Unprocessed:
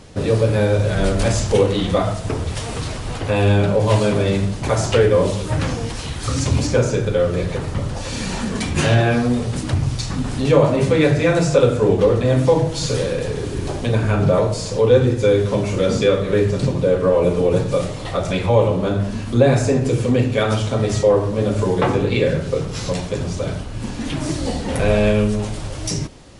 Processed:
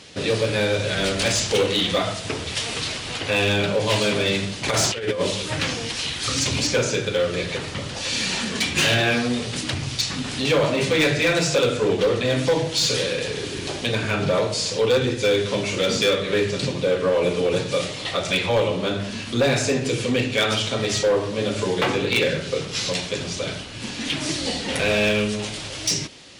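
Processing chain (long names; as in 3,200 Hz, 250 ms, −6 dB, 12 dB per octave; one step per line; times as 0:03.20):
meter weighting curve D
0:04.68–0:05.21: compressor whose output falls as the input rises −18 dBFS, ratio −0.5
hard clipping −10.5 dBFS, distortion −16 dB
level −3.5 dB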